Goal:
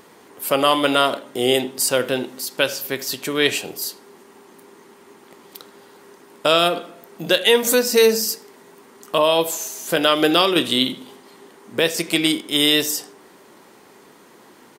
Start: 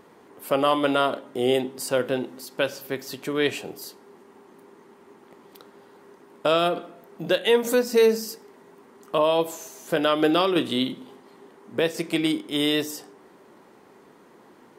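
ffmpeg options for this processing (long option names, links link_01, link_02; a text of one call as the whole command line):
ffmpeg -i in.wav -filter_complex "[0:a]highshelf=frequency=2300:gain=11,asplit=2[link_01][link_02];[link_02]adelay=80,highpass=300,lowpass=3400,asoftclip=type=hard:threshold=-12.5dB,volume=-18dB[link_03];[link_01][link_03]amix=inputs=2:normalize=0,volume=2.5dB" out.wav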